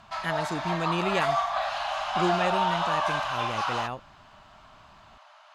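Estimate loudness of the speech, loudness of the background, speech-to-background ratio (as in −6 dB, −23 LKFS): −32.0 LKFS, −28.5 LKFS, −3.5 dB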